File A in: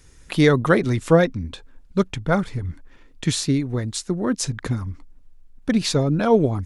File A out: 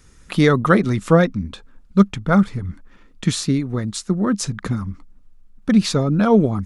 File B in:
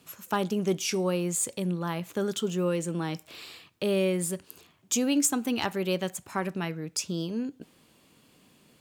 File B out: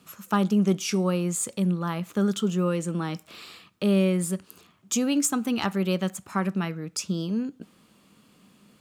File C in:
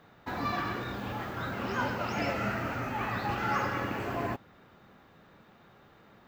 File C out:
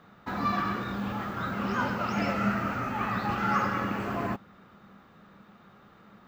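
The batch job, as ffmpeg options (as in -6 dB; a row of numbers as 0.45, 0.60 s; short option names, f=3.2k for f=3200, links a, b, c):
-af "equalizer=f=200:t=o:w=0.33:g=10,equalizer=f=1.25k:t=o:w=0.33:g=7,equalizer=f=16k:t=o:w=0.33:g=-6"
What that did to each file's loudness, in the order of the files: +2.5, +3.0, +3.0 LU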